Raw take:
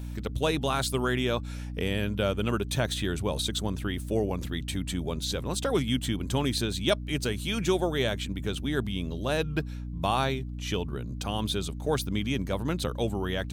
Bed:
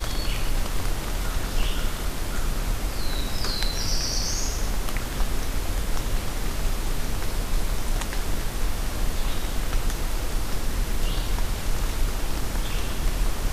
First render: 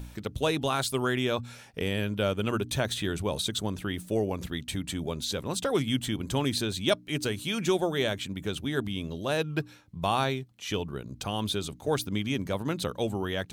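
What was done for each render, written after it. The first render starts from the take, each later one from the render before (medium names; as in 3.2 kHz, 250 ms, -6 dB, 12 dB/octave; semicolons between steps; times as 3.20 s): de-hum 60 Hz, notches 5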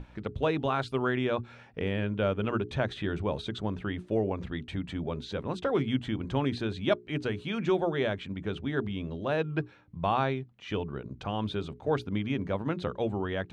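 low-pass 2.2 kHz 12 dB/octave; hum notches 60/120/180/240/300/360/420 Hz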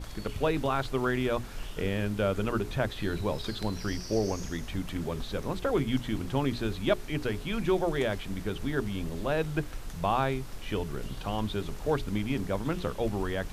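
add bed -15 dB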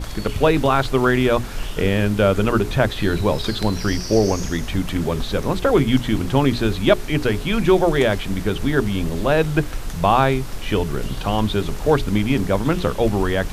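trim +11.5 dB; peak limiter -1 dBFS, peak gain reduction 0.5 dB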